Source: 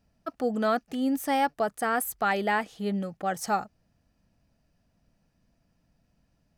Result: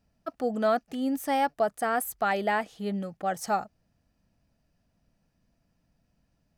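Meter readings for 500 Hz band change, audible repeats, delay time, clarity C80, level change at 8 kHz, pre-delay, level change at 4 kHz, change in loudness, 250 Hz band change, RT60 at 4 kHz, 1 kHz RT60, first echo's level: +1.0 dB, none, none, none, -2.0 dB, none, -2.0 dB, -0.5 dB, -2.0 dB, none, none, none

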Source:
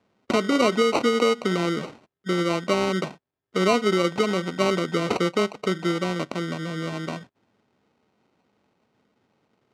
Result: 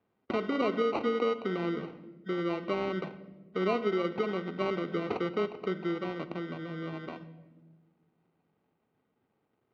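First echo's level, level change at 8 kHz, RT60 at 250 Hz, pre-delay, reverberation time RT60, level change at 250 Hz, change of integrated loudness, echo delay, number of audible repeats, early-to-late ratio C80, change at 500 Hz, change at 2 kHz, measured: none, under -25 dB, 2.0 s, 3 ms, 1.2 s, -8.5 dB, -8.5 dB, none, none, 15.5 dB, -7.5 dB, -10.5 dB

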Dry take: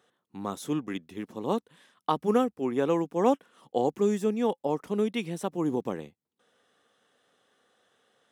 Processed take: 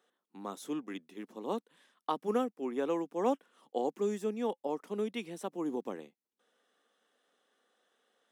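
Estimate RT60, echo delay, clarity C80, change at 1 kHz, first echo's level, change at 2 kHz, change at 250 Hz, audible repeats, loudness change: none, none, none, -6.5 dB, none, -6.5 dB, -8.0 dB, none, -7.0 dB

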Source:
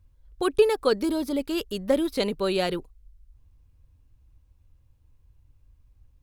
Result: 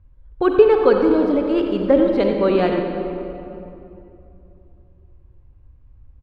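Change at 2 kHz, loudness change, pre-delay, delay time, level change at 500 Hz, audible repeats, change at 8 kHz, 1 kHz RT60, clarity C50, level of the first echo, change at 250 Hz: +5.0 dB, +8.5 dB, 38 ms, 91 ms, +9.0 dB, 1, under -15 dB, 2.6 s, 3.0 dB, -11.5 dB, +9.5 dB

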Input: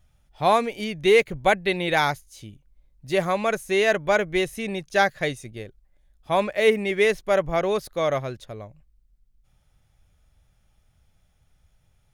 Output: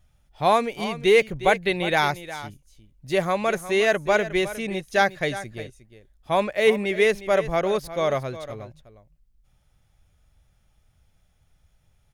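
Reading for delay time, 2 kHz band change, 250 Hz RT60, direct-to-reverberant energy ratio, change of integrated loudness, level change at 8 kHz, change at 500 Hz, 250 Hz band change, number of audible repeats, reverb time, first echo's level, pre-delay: 0.359 s, 0.0 dB, none, none, 0.0 dB, 0.0 dB, 0.0 dB, 0.0 dB, 1, none, -14.0 dB, none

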